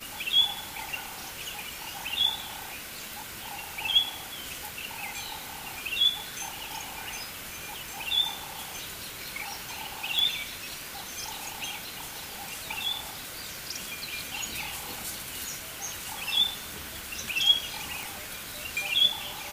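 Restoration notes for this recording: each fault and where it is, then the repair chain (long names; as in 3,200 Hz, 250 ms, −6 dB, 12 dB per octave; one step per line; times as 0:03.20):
surface crackle 22 per second −37 dBFS
0:10.19: click
0:18.03: click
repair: click removal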